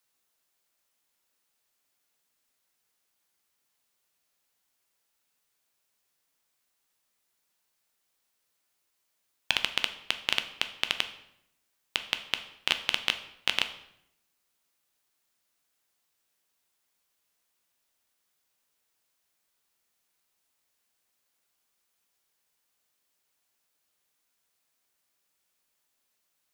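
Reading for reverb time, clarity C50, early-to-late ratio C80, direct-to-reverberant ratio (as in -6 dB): 0.75 s, 12.0 dB, 15.0 dB, 8.0 dB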